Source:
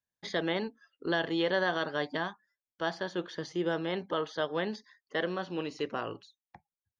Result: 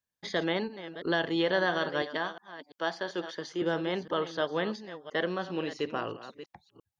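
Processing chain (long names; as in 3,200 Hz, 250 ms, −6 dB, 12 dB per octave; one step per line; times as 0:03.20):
delay that plays each chunk backwards 340 ms, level −12.5 dB
0:02.02–0:03.62: Bessel high-pass filter 280 Hz, order 2
level +1.5 dB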